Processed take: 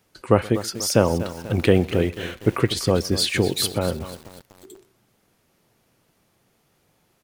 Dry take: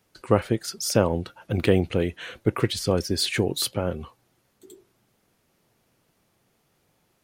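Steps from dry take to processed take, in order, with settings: on a send: delay 124 ms -23 dB; on the sum: bit-crushed delay 244 ms, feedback 55%, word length 6-bit, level -13 dB; trim +3 dB

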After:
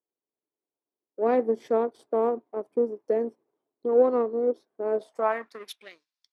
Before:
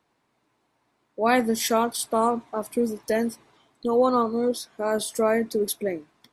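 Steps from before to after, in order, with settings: power-law waveshaper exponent 1.4; band-pass sweep 420 Hz -> 4.9 kHz, 4.91–6.01 s; trim +7 dB

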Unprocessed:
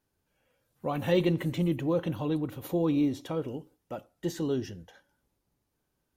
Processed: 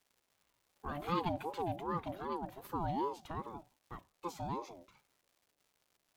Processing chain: crackle 440 per s -51 dBFS; ring modulator with a swept carrier 570 Hz, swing 25%, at 2.6 Hz; trim -7 dB

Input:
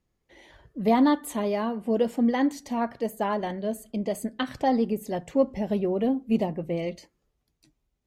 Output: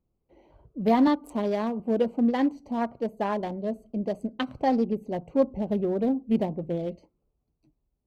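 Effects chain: local Wiener filter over 25 samples; 1.07–1.80 s: three bands compressed up and down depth 40%

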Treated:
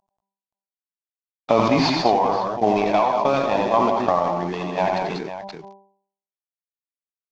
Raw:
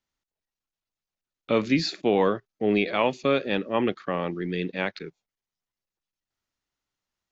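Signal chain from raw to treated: CVSD coder 32 kbps; high-order bell 820 Hz +15 dB 1 oct; de-hum 196.5 Hz, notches 5; compression, threshold -18 dBFS, peak gain reduction 10 dB; multi-tap echo 80/88/185/201/525 ms -11.5/-6.5/-6.5/-9.5/-12 dB; transient shaper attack +6 dB, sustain -3 dB; decay stretcher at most 26 dB/s; trim -1 dB

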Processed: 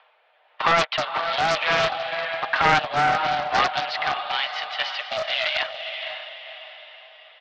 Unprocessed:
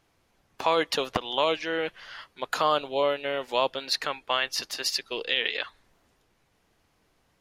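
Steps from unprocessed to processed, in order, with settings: comb 6.8 ms, depth 70%; in parallel at +0.5 dB: peak limiter -15 dBFS, peak gain reduction 7.5 dB; on the sum: waveshaping leveller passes 2; upward compressor, threshold -35 dBFS; rotary cabinet horn 1 Hz; added noise brown -46 dBFS; mistuned SSB +180 Hz 440–3300 Hz; on a send: echo that smears into a reverb 521 ms, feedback 44%, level -7 dB; on the sum: loudspeaker Doppler distortion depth 0.33 ms; trim -4 dB

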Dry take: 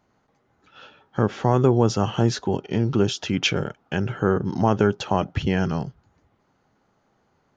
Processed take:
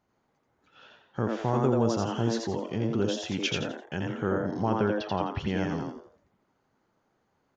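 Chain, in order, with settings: 4.61–5.40 s: steep low-pass 5.7 kHz 72 dB/octave; on a send: frequency-shifting echo 85 ms, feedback 32%, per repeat +110 Hz, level -3 dB; on the sum: trim -8.5 dB

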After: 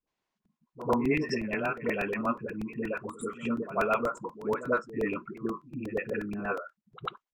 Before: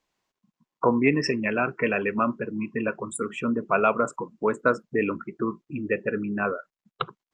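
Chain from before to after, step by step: treble shelf 6.9 kHz -9.5 dB; phase dispersion highs, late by 74 ms, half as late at 440 Hz; pre-echo 95 ms -15.5 dB; crackling interface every 0.12 s, samples 128, repeat, from 0.45 s; trim -5.5 dB

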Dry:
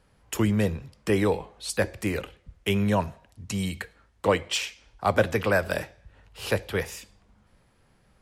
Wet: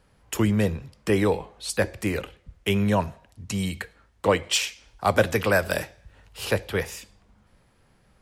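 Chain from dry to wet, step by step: 4.43–6.45 s: treble shelf 4.3 kHz +6.5 dB; trim +1.5 dB

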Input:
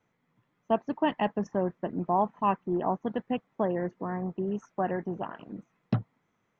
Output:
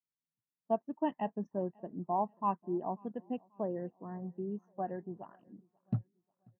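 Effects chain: feedback delay 538 ms, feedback 57%, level -20 dB; spectral contrast expander 1.5:1; trim -6 dB

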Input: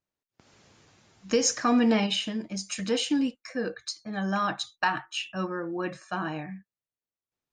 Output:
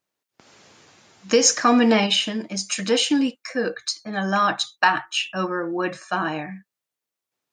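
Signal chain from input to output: high-pass 290 Hz 6 dB/octave; trim +8.5 dB

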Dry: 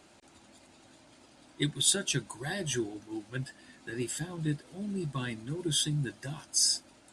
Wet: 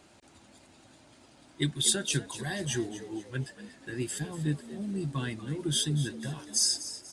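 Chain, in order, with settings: peaking EQ 93 Hz +4 dB 1.6 oct; frequency-shifting echo 241 ms, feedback 38%, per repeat +75 Hz, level -13.5 dB

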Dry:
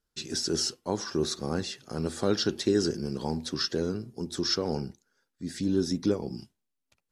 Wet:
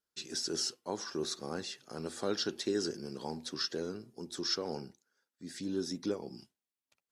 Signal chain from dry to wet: high-pass 350 Hz 6 dB/octave; trim -5 dB

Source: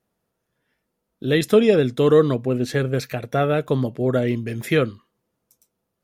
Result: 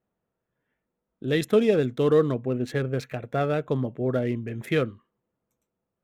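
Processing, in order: local Wiener filter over 9 samples; trim -5 dB

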